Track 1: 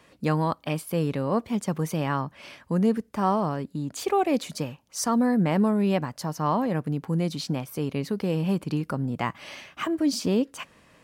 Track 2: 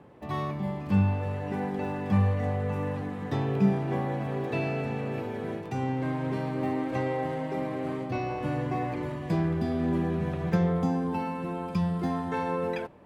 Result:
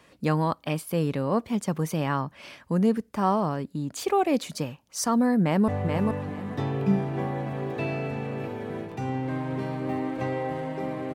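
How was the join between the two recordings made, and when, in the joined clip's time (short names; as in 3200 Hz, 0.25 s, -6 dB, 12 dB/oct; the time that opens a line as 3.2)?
track 1
5.41–5.68 echo throw 0.43 s, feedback 20%, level -4 dB
5.68 switch to track 2 from 2.42 s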